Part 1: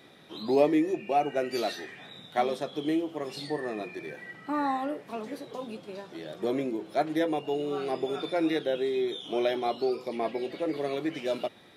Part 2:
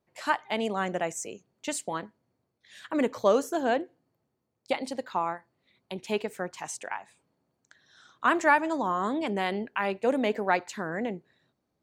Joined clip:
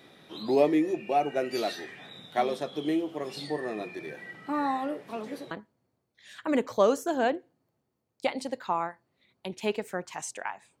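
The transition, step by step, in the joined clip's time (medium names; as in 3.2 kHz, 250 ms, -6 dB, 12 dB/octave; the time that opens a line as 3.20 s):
part 1
5.51 s: go over to part 2 from 1.97 s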